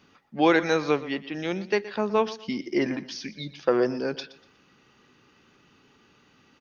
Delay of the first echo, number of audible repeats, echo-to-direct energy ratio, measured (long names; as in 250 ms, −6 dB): 121 ms, 2, −16.0 dB